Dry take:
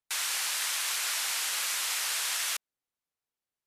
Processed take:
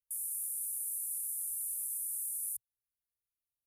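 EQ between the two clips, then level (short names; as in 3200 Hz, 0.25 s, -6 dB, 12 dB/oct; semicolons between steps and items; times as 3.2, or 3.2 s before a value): Chebyshev band-stop 120–9600 Hz, order 4; fixed phaser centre 720 Hz, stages 4; notch 3800 Hz, Q 5; +1.5 dB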